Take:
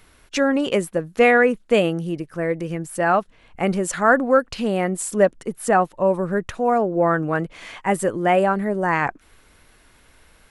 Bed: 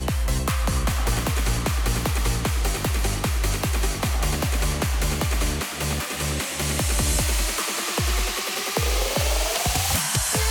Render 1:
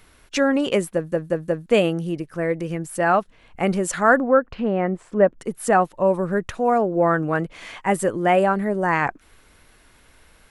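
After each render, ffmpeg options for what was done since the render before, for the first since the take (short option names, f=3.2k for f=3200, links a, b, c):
-filter_complex "[0:a]asplit=3[a][b][c];[a]afade=t=out:st=4.19:d=0.02[d];[b]lowpass=1.8k,afade=t=in:st=4.19:d=0.02,afade=t=out:st=5.37:d=0.02[e];[c]afade=t=in:st=5.37:d=0.02[f];[d][e][f]amix=inputs=3:normalize=0,asplit=5[g][h][i][j][k];[g]atrim=end=1.122[l];[h]atrim=start=0.938:end=1.122[m];[i]atrim=start=0.938:end=1.122[n];[j]atrim=start=0.938:end=1.122[o];[k]atrim=start=1.658[p];[l][m]acrossfade=d=0.004:c1=hsin:c2=hsin[q];[q][n]acrossfade=d=0.004:c1=hsin:c2=hsin[r];[r][o]acrossfade=d=0.004:c1=hsin:c2=hsin[s];[s][p]acrossfade=d=0.004:c1=hsin:c2=hsin"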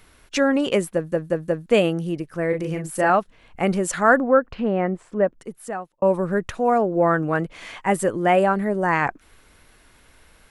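-filter_complex "[0:a]asettb=1/sr,asplit=3[a][b][c];[a]atrim=end=2.494[d];[b]atrim=start=2.49:end=3.1,asetpts=PTS-STARTPTS,afade=t=in:d=0.004:c=qsin,afade=t=out:st=0.606:d=0.004:c=qsin,asplit=2[e][f];[f]adelay=38,volume=-5dB[g];[e][g]amix=inputs=2:normalize=0,atrim=end_sample=26901[h];[c]atrim=start=3.096[i];[d][h]acrossfade=d=0.004:c1=hsin:c2=qsin[j];[j][i]acrossfade=d=0.004:c1=qsin:c2=hsin,asplit=2[k][l];[k]atrim=end=6.02,asetpts=PTS-STARTPTS,afade=t=out:st=4.81:d=1.21[m];[l]atrim=start=6.02,asetpts=PTS-STARTPTS,afade=t=in:d=0.004:c=hsin[n];[m][n]concat=n=2:v=0:a=1"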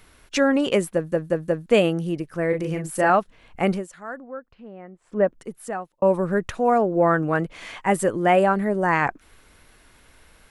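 -filter_complex "[0:a]asplit=3[a][b][c];[a]atrim=end=3.87,asetpts=PTS-STARTPTS,afade=t=out:st=3.69:d=0.18:silence=0.112202[d];[b]atrim=start=3.87:end=5.01,asetpts=PTS-STARTPTS,volume=-19dB[e];[c]atrim=start=5.01,asetpts=PTS-STARTPTS,afade=t=in:d=0.18:silence=0.112202[f];[d][e][f]concat=n=3:v=0:a=1"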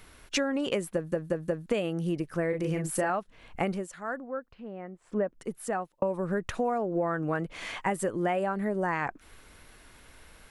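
-af "acompressor=threshold=-25dB:ratio=12"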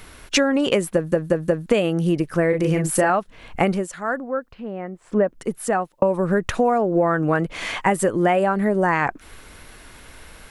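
-af "volume=10dB"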